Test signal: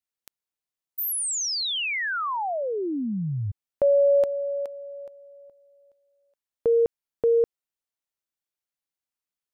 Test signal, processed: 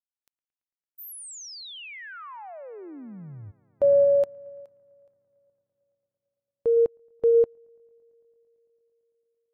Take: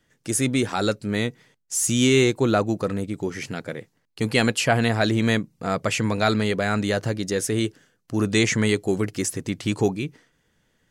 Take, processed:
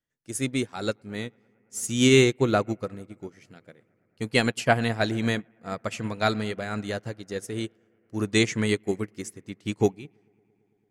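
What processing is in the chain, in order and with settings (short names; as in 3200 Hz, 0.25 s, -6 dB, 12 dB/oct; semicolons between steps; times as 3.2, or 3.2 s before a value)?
on a send: analogue delay 0.112 s, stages 2048, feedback 85%, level -21 dB; on the sum: upward expander 2.5:1, over -32 dBFS; gain +1.5 dB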